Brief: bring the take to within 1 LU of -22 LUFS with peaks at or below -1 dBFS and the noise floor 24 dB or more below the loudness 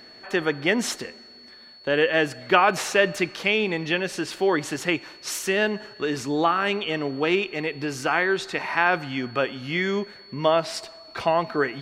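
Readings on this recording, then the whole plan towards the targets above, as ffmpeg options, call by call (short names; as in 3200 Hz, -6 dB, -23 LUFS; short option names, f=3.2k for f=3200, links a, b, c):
steady tone 4400 Hz; tone level -46 dBFS; loudness -24.0 LUFS; peak -2.0 dBFS; loudness target -22.0 LUFS
-> -af "bandreject=f=4.4k:w=30"
-af "volume=2dB,alimiter=limit=-1dB:level=0:latency=1"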